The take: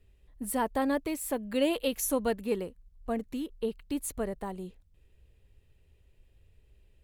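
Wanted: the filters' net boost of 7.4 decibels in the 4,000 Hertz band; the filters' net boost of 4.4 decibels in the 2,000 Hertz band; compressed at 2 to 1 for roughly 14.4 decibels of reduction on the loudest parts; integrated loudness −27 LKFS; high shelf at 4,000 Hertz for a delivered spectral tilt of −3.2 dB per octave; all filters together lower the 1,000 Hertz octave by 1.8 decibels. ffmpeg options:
ffmpeg -i in.wav -af "equalizer=frequency=1000:width_type=o:gain=-3.5,equalizer=frequency=2000:width_type=o:gain=3.5,highshelf=frequency=4000:gain=4.5,equalizer=frequency=4000:width_type=o:gain=6.5,acompressor=threshold=-50dB:ratio=2,volume=17dB" out.wav

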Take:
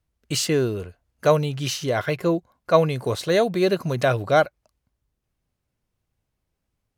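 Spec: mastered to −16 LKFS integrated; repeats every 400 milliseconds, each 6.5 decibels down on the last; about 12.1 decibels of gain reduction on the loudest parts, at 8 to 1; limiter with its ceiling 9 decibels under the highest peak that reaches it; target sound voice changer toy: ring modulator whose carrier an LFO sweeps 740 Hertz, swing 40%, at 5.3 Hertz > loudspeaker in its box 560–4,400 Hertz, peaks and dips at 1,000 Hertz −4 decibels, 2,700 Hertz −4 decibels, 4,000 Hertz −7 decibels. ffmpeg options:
ffmpeg -i in.wav -af "acompressor=threshold=-24dB:ratio=8,alimiter=limit=-23dB:level=0:latency=1,aecho=1:1:400|800|1200|1600|2000|2400:0.473|0.222|0.105|0.0491|0.0231|0.0109,aeval=exprs='val(0)*sin(2*PI*740*n/s+740*0.4/5.3*sin(2*PI*5.3*n/s))':channel_layout=same,highpass=560,equalizer=frequency=1000:width_type=q:width=4:gain=-4,equalizer=frequency=2700:width_type=q:width=4:gain=-4,equalizer=frequency=4000:width_type=q:width=4:gain=-7,lowpass=frequency=4400:width=0.5412,lowpass=frequency=4400:width=1.3066,volume=22dB" out.wav

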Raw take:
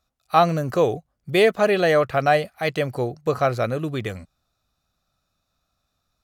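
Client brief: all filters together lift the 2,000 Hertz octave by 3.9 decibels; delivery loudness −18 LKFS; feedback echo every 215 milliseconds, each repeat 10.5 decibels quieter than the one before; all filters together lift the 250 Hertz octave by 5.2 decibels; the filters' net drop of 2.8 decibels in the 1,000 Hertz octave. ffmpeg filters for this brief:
ffmpeg -i in.wav -af "equalizer=frequency=250:width_type=o:gain=8.5,equalizer=frequency=1000:width_type=o:gain=-7,equalizer=frequency=2000:width_type=o:gain=6.5,aecho=1:1:215|430|645:0.299|0.0896|0.0269,volume=1.5dB" out.wav

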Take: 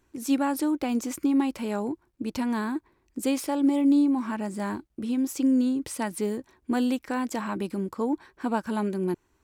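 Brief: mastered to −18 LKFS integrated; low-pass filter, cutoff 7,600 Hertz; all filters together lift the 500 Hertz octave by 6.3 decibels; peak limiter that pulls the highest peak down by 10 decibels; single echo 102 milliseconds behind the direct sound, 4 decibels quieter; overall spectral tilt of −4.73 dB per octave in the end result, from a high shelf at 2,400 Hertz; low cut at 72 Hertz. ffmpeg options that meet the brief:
ffmpeg -i in.wav -af "highpass=72,lowpass=7600,equalizer=frequency=500:width_type=o:gain=8,highshelf=frequency=2400:gain=-6,alimiter=limit=-20.5dB:level=0:latency=1,aecho=1:1:102:0.631,volume=10dB" out.wav

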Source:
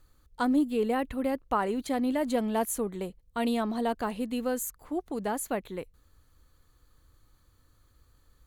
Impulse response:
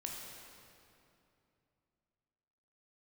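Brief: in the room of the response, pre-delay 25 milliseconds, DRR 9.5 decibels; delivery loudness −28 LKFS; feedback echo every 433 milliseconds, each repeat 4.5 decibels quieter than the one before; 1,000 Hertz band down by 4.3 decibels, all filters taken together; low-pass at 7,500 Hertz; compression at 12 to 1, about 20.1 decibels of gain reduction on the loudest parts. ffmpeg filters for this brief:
-filter_complex "[0:a]lowpass=7500,equalizer=frequency=1000:width_type=o:gain=-6,acompressor=threshold=-43dB:ratio=12,aecho=1:1:433|866|1299|1732|2165|2598|3031|3464|3897:0.596|0.357|0.214|0.129|0.0772|0.0463|0.0278|0.0167|0.01,asplit=2[link_01][link_02];[1:a]atrim=start_sample=2205,adelay=25[link_03];[link_02][link_03]afir=irnorm=-1:irlink=0,volume=-9dB[link_04];[link_01][link_04]amix=inputs=2:normalize=0,volume=17.5dB"

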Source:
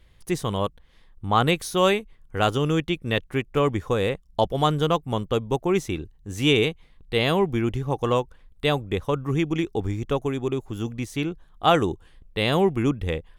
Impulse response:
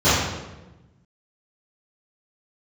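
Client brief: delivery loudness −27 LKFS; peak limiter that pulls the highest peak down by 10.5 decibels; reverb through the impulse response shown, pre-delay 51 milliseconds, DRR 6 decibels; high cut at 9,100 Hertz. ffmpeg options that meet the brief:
-filter_complex "[0:a]lowpass=9100,alimiter=limit=-15dB:level=0:latency=1,asplit=2[link_01][link_02];[1:a]atrim=start_sample=2205,adelay=51[link_03];[link_02][link_03]afir=irnorm=-1:irlink=0,volume=-29.5dB[link_04];[link_01][link_04]amix=inputs=2:normalize=0,volume=-1dB"

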